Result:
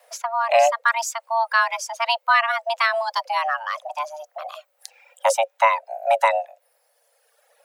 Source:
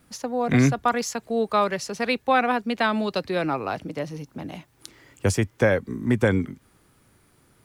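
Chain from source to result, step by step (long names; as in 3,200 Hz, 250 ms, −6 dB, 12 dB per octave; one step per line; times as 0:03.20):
frequency shifter +450 Hz
reverb reduction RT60 1.5 s
level +3 dB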